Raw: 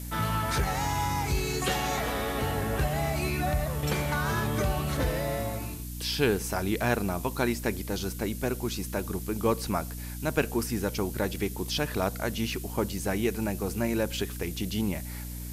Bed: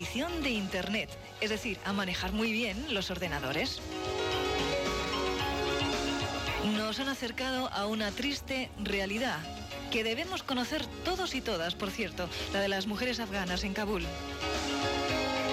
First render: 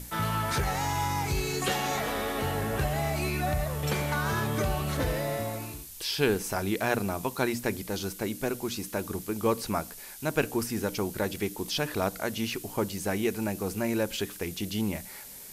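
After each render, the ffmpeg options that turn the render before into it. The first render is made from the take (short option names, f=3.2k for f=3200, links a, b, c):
-af "bandreject=f=60:t=h:w=6,bandreject=f=120:t=h:w=6,bandreject=f=180:t=h:w=6,bandreject=f=240:t=h:w=6,bandreject=f=300:t=h:w=6"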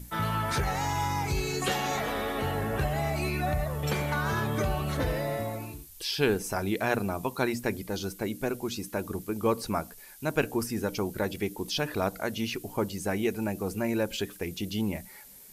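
-af "afftdn=nr=8:nf=-44"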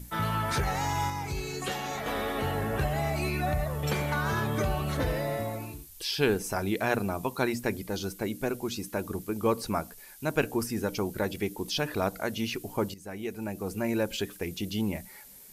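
-filter_complex "[0:a]asplit=4[a][b][c][d];[a]atrim=end=1.102[e];[b]atrim=start=1.098:end=2.062,asetpts=PTS-STARTPTS,volume=-4.5dB[f];[c]atrim=start=2.058:end=12.94,asetpts=PTS-STARTPTS,afade=t=out:st=10.878:d=0.004:c=hsin:silence=0.16788[g];[d]atrim=start=12.94,asetpts=PTS-STARTPTS,afade=t=in:d=0.97:silence=0.16788[h];[e][f]acrossfade=d=0.004:c1=hsin:c2=hsin[i];[g][h]concat=n=2:v=0:a=1[j];[i][j]acrossfade=d=0.004:c1=hsin:c2=hsin"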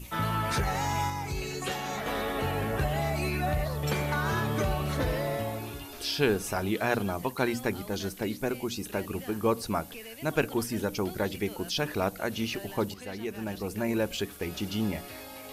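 -filter_complex "[1:a]volume=-13.5dB[a];[0:a][a]amix=inputs=2:normalize=0"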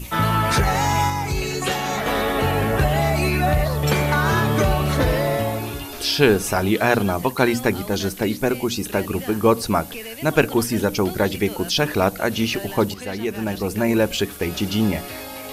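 -af "volume=10dB,alimiter=limit=-2dB:level=0:latency=1"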